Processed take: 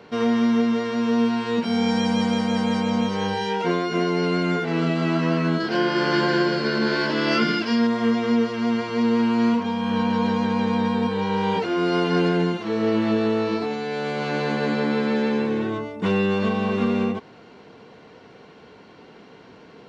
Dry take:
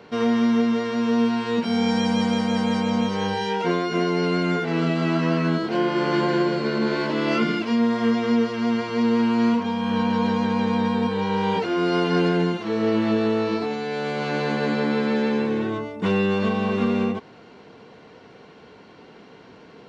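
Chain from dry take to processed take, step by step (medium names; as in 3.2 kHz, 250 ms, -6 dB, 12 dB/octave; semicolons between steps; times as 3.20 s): 5.60–7.87 s: graphic EQ with 31 bands 1.6 kHz +8 dB, 3.15 kHz +4 dB, 5 kHz +12 dB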